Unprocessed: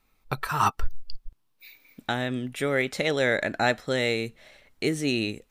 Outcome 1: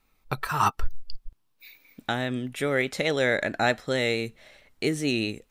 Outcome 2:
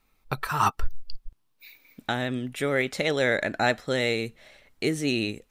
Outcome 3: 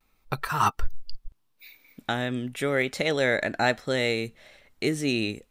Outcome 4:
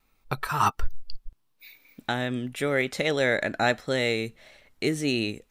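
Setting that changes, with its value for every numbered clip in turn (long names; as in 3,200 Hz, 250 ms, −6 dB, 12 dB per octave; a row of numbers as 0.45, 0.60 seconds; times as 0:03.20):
pitch vibrato, speed: 4.6, 16, 0.36, 1.6 Hertz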